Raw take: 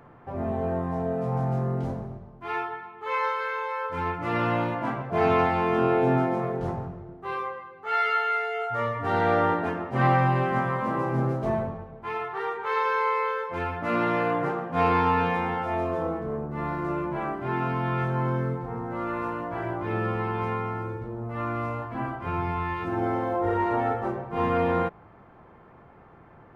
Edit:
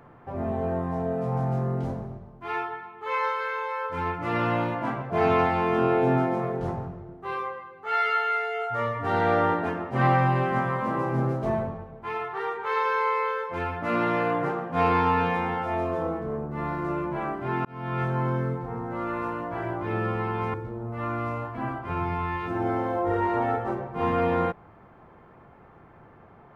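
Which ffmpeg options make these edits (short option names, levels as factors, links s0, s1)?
-filter_complex "[0:a]asplit=3[s0][s1][s2];[s0]atrim=end=17.65,asetpts=PTS-STARTPTS,afade=t=out:st=17.646:d=0.004:c=hsin[s3];[s1]atrim=start=17.65:end=20.542,asetpts=PTS-STARTPTS,afade=t=in:d=0.37[s4];[s2]atrim=start=20.908[s5];[s3][s4]concat=n=2:v=0:a=1[s6];[s6][s5]acrossfade=d=0.004:c1=hsin:c2=hsin"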